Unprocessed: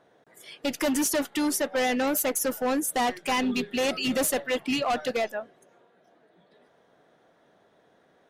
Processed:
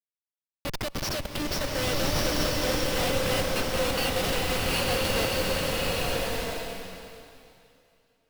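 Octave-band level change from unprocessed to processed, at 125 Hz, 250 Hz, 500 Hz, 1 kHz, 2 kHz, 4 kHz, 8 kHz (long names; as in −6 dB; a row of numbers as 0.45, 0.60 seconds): +16.0, −4.5, 0.0, −2.0, +1.5, +5.0, −2.5 decibels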